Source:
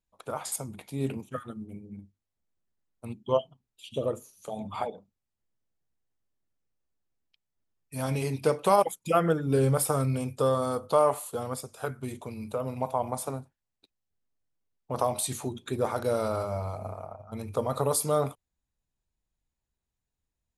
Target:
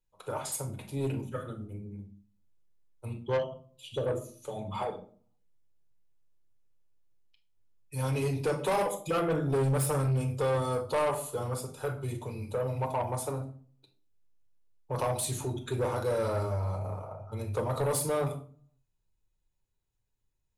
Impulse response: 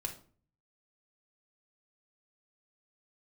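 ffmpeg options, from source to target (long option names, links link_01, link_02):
-filter_complex "[1:a]atrim=start_sample=2205[link_01];[0:a][link_01]afir=irnorm=-1:irlink=0,asoftclip=type=tanh:threshold=-23.5dB"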